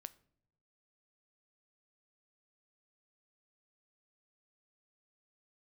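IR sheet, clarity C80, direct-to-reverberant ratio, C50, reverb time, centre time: 24.0 dB, 14.0 dB, 20.5 dB, no single decay rate, 3 ms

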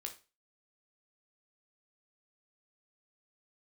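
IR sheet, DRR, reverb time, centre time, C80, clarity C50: 3.0 dB, 0.30 s, 11 ms, 18.0 dB, 12.0 dB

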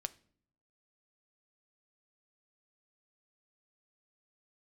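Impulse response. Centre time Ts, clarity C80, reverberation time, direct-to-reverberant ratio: 3 ms, 25.0 dB, no single decay rate, 11.5 dB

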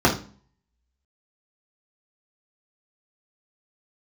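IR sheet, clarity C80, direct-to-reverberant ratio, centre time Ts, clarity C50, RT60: 15.0 dB, -5.0 dB, 20 ms, 9.5 dB, 0.40 s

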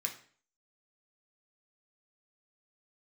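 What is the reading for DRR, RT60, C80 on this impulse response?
1.5 dB, 0.45 s, 14.5 dB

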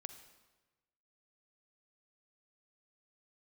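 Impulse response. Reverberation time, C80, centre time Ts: 1.2 s, 11.5 dB, 14 ms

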